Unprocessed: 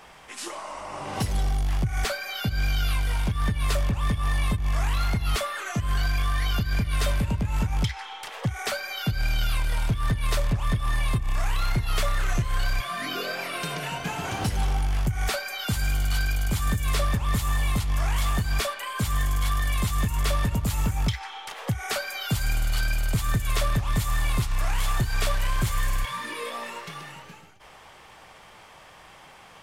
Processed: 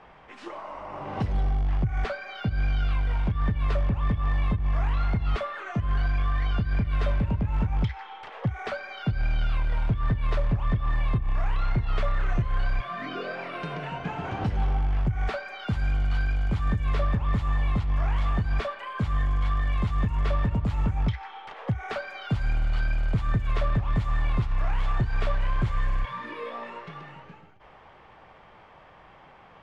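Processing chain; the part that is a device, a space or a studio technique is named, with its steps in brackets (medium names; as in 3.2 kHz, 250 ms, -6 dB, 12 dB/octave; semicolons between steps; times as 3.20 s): phone in a pocket (low-pass 3.5 kHz 12 dB/octave; treble shelf 2.4 kHz -12 dB)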